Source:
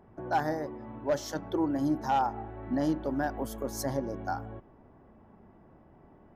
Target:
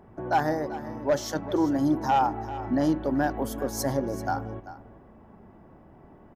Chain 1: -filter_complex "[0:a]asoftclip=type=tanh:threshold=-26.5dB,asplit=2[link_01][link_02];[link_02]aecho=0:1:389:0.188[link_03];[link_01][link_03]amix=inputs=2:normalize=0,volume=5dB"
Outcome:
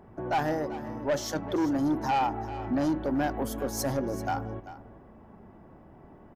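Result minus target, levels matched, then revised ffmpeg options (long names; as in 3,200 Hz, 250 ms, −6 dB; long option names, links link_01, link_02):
soft clipping: distortion +17 dB
-filter_complex "[0:a]asoftclip=type=tanh:threshold=-15.5dB,asplit=2[link_01][link_02];[link_02]aecho=0:1:389:0.188[link_03];[link_01][link_03]amix=inputs=2:normalize=0,volume=5dB"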